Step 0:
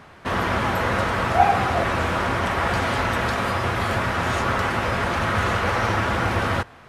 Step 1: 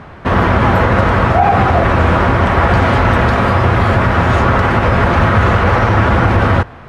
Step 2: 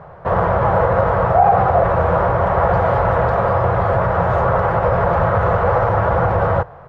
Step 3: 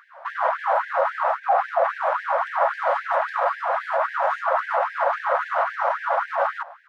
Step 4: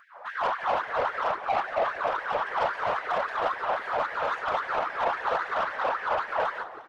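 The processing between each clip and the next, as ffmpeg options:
ffmpeg -i in.wav -af "lowpass=frequency=1700:poles=1,lowshelf=frequency=140:gain=6.5,alimiter=level_in=12.5dB:limit=-1dB:release=50:level=0:latency=1,volume=-1dB" out.wav
ffmpeg -i in.wav -af "firequalizer=gain_entry='entry(100,0);entry(160,6);entry(240,-13);entry(500,10);entry(2400,-9);entry(8100,-12)':delay=0.05:min_phase=1,volume=-8dB" out.wav
ffmpeg -i in.wav -af "alimiter=limit=-9.5dB:level=0:latency=1:release=16,afftfilt=real='re*gte(b*sr/1024,490*pow(1600/490,0.5+0.5*sin(2*PI*3.7*pts/sr)))':imag='im*gte(b*sr/1024,490*pow(1600/490,0.5+0.5*sin(2*PI*3.7*pts/sr)))':win_size=1024:overlap=0.75" out.wav
ffmpeg -i in.wav -filter_complex "[0:a]asoftclip=type=tanh:threshold=-19dB,asplit=6[link_01][link_02][link_03][link_04][link_05][link_06];[link_02]adelay=177,afreqshift=-72,volume=-14dB[link_07];[link_03]adelay=354,afreqshift=-144,volume=-20.4dB[link_08];[link_04]adelay=531,afreqshift=-216,volume=-26.8dB[link_09];[link_05]adelay=708,afreqshift=-288,volume=-33.1dB[link_10];[link_06]adelay=885,afreqshift=-360,volume=-39.5dB[link_11];[link_01][link_07][link_08][link_09][link_10][link_11]amix=inputs=6:normalize=0,afftfilt=real='hypot(re,im)*cos(2*PI*random(0))':imag='hypot(re,im)*sin(2*PI*random(1))':win_size=512:overlap=0.75,volume=3.5dB" out.wav

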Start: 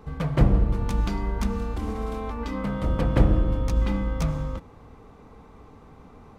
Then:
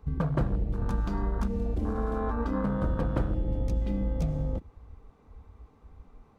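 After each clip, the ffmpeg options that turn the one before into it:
ffmpeg -i in.wav -filter_complex "[0:a]afwtdn=0.0282,acrossover=split=1900[link_01][link_02];[link_01]acompressor=threshold=-30dB:ratio=6[link_03];[link_03][link_02]amix=inputs=2:normalize=0,volume=5dB" out.wav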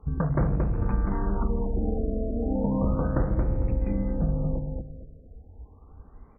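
ffmpeg -i in.wav -filter_complex "[0:a]asplit=2[link_01][link_02];[link_02]adelay=226,lowpass=frequency=1500:poles=1,volume=-4dB,asplit=2[link_03][link_04];[link_04]adelay=226,lowpass=frequency=1500:poles=1,volume=0.3,asplit=2[link_05][link_06];[link_06]adelay=226,lowpass=frequency=1500:poles=1,volume=0.3,asplit=2[link_07][link_08];[link_08]adelay=226,lowpass=frequency=1500:poles=1,volume=0.3[link_09];[link_01][link_03][link_05][link_07][link_09]amix=inputs=5:normalize=0,afftfilt=real='re*lt(b*sr/1024,720*pow(2700/720,0.5+0.5*sin(2*PI*0.34*pts/sr)))':imag='im*lt(b*sr/1024,720*pow(2700/720,0.5+0.5*sin(2*PI*0.34*pts/sr)))':win_size=1024:overlap=0.75,volume=2dB" out.wav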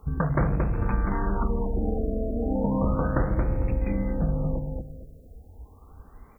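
ffmpeg -i in.wav -af "crystalizer=i=8.5:c=0" out.wav

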